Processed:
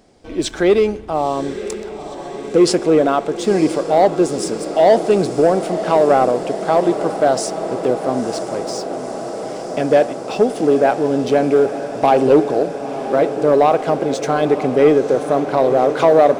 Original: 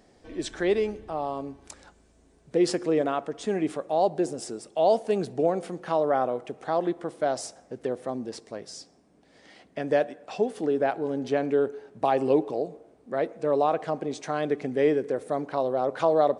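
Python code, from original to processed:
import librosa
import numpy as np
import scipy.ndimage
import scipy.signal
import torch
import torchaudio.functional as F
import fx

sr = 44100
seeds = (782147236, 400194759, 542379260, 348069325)

p1 = fx.notch(x, sr, hz=1800.0, q=8.0)
p2 = fx.leveller(p1, sr, passes=1)
p3 = p2 + fx.echo_diffused(p2, sr, ms=957, feedback_pct=79, wet_db=-11.5, dry=0)
y = p3 * 10.0 ** (8.0 / 20.0)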